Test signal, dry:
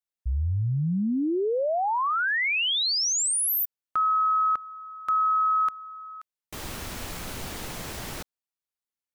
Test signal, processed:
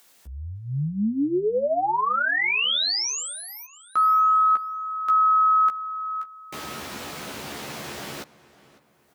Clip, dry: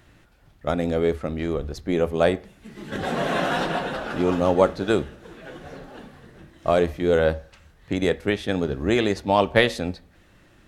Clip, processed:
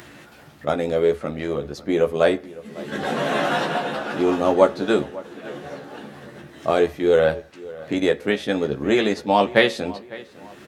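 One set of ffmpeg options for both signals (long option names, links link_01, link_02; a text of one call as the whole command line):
ffmpeg -i in.wav -filter_complex "[0:a]acompressor=mode=upward:threshold=-28dB:ratio=2.5:attack=0.85:release=770:knee=2.83:detection=peak,highpass=160,asplit=2[link_01][link_02];[link_02]adelay=14,volume=-5dB[link_03];[link_01][link_03]amix=inputs=2:normalize=0,asplit=2[link_04][link_05];[link_05]adelay=553,lowpass=frequency=2900:poles=1,volume=-19dB,asplit=2[link_06][link_07];[link_07]adelay=553,lowpass=frequency=2900:poles=1,volume=0.43,asplit=2[link_08][link_09];[link_09]adelay=553,lowpass=frequency=2900:poles=1,volume=0.43[link_10];[link_06][link_08][link_10]amix=inputs=3:normalize=0[link_11];[link_04][link_11]amix=inputs=2:normalize=0,acrossover=split=6000[link_12][link_13];[link_13]acompressor=threshold=-43dB:ratio=4:attack=1:release=60[link_14];[link_12][link_14]amix=inputs=2:normalize=0,volume=1dB" out.wav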